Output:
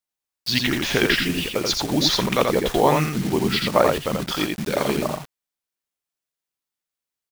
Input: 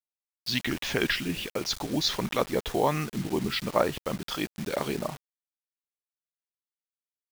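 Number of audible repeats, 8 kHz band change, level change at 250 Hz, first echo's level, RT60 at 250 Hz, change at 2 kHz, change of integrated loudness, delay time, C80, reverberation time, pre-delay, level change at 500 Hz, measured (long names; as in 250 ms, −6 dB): 1, +8.0 dB, +8.0 dB, −3.5 dB, no reverb audible, +8.0 dB, +8.0 dB, 84 ms, no reverb audible, no reverb audible, no reverb audible, +8.0 dB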